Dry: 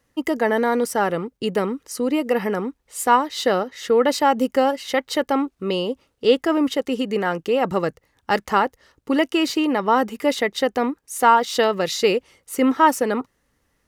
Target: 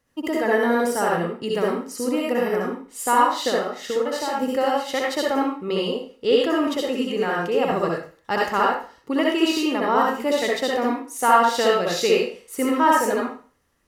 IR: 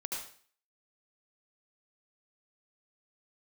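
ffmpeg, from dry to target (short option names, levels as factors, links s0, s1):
-filter_complex "[0:a]asettb=1/sr,asplit=3[s0][s1][s2];[s0]atrim=end=3.494[s3];[s1]atrim=start=3.49:end=4.42,asetpts=PTS-STARTPTS,afade=t=in:d=0.004:c=qsin,afade=t=out:st=0.926:d=0.004:c=qsin,acompressor=threshold=0.1:ratio=6[s4];[s2]atrim=start=4.416[s5];[s3][s4]acrossfade=d=0.004:c1=hsin:c2=qsin[s6];[s6][s5]acrossfade=d=0.004:c1=qsin:c2=hsin[s7];[1:a]atrim=start_sample=2205,asetrate=52920,aresample=44100[s8];[s7][s8]afir=irnorm=-1:irlink=0"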